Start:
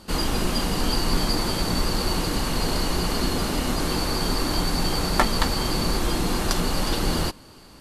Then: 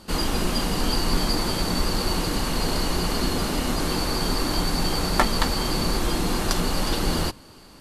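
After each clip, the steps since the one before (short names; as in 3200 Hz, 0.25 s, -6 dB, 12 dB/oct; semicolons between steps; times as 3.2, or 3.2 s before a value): notches 60/120 Hz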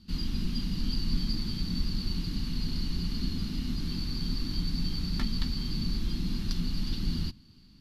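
EQ curve 230 Hz 0 dB, 550 Hz -28 dB, 4600 Hz -4 dB, 8200 Hz -22 dB, 13000 Hz -15 dB; gain -4.5 dB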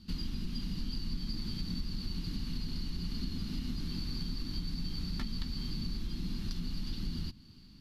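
compressor 4:1, threshold -34 dBFS, peak gain reduction 10.5 dB; gain +1 dB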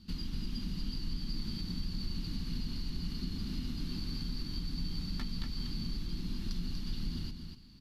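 echo 0.241 s -6.5 dB; gain -1.5 dB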